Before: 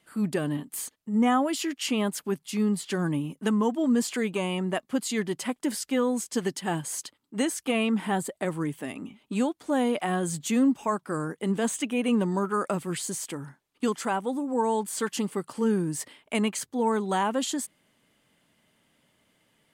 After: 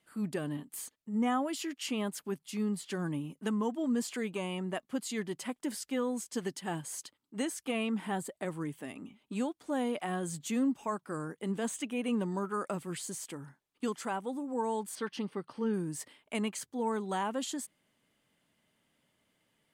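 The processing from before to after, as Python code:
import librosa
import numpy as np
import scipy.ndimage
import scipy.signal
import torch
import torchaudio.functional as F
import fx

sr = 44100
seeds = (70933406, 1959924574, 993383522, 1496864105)

y = fx.savgol(x, sr, points=15, at=(14.95, 15.74))
y = F.gain(torch.from_numpy(y), -7.5).numpy()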